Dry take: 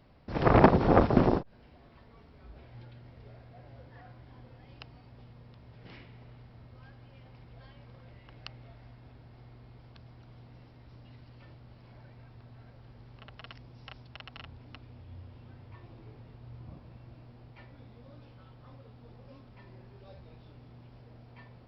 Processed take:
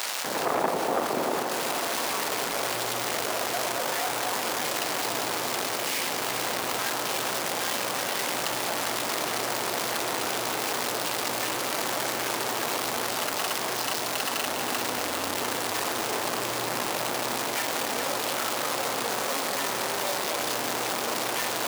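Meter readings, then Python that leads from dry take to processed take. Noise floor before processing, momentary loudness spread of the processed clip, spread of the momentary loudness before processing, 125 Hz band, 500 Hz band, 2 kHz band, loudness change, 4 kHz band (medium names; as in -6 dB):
-55 dBFS, 1 LU, 11 LU, -9.0 dB, +5.0 dB, +15.0 dB, -3.5 dB, +24.0 dB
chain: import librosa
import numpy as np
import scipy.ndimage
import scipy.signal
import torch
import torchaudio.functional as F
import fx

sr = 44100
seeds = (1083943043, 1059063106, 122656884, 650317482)

p1 = x + 0.5 * 10.0 ** (-22.5 / 20.0) * np.sign(x)
p2 = fx.high_shelf(p1, sr, hz=4000.0, db=10.5)
p3 = p2 + fx.echo_split(p2, sr, split_hz=900.0, low_ms=244, high_ms=406, feedback_pct=52, wet_db=-10, dry=0)
p4 = fx.rider(p3, sr, range_db=4, speed_s=0.5)
p5 = np.where(np.abs(p4) >= 10.0 ** (-29.0 / 20.0), p4, 0.0)
p6 = scipy.signal.sosfilt(scipy.signal.butter(2, 320.0, 'highpass', fs=sr, output='sos'), p5)
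p7 = fx.peak_eq(p6, sr, hz=880.0, db=5.5, octaves=2.2)
p8 = fx.env_flatten(p7, sr, amount_pct=50)
y = p8 * 10.0 ** (-8.5 / 20.0)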